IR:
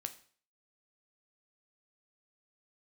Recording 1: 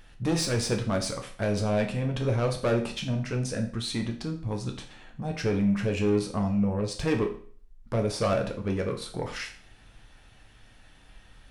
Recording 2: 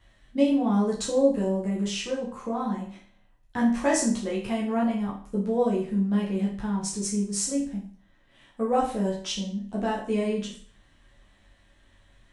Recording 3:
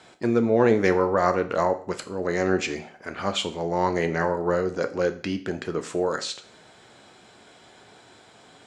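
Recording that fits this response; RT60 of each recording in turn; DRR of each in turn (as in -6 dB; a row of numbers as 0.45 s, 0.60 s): 3; 0.45 s, 0.45 s, 0.45 s; 2.5 dB, -5.0 dB, 7.5 dB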